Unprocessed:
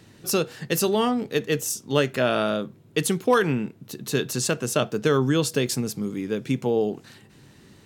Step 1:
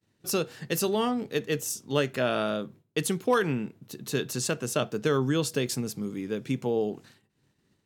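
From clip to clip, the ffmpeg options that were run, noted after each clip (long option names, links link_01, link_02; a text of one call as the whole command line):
ffmpeg -i in.wav -af "agate=range=-33dB:threshold=-40dB:ratio=3:detection=peak,volume=-4.5dB" out.wav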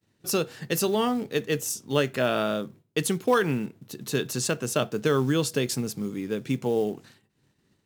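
ffmpeg -i in.wav -af "acrusher=bits=7:mode=log:mix=0:aa=0.000001,volume=2dB" out.wav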